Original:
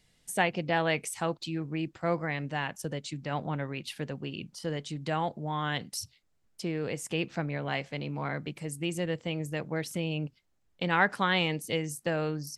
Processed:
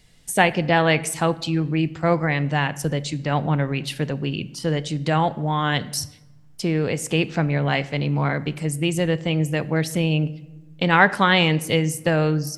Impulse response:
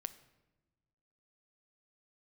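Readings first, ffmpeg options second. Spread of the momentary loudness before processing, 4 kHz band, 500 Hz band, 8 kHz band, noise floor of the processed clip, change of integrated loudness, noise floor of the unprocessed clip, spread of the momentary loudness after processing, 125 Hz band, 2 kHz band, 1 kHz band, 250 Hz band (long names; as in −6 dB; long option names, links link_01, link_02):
10 LU, +9.5 dB, +9.5 dB, +9.5 dB, −48 dBFS, +10.5 dB, −70 dBFS, 8 LU, +13.0 dB, +9.5 dB, +9.5 dB, +11.0 dB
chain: -filter_complex "[0:a]asplit=2[link_01][link_02];[1:a]atrim=start_sample=2205,lowshelf=frequency=120:gain=8[link_03];[link_02][link_03]afir=irnorm=-1:irlink=0,volume=9dB[link_04];[link_01][link_04]amix=inputs=2:normalize=0"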